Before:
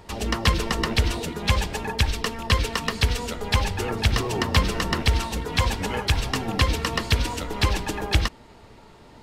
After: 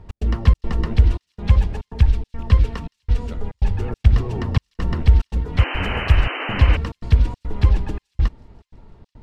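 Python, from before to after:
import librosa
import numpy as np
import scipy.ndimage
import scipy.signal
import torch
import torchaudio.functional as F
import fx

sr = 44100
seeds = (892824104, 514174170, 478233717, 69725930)

p1 = fx.riaa(x, sr, side='playback')
p2 = fx.step_gate(p1, sr, bpm=141, pattern='x.xxx.xxxxx..xxx', floor_db=-60.0, edge_ms=4.5)
p3 = fx.high_shelf(p2, sr, hz=10000.0, db=10.5, at=(5.69, 6.22))
p4 = p3 + fx.echo_wet_highpass(p3, sr, ms=167, feedback_pct=78, hz=5000.0, wet_db=-23.5, dry=0)
p5 = fx.spec_paint(p4, sr, seeds[0], shape='noise', start_s=5.57, length_s=1.2, low_hz=260.0, high_hz=3100.0, level_db=-21.0)
y = p5 * librosa.db_to_amplitude(-6.5)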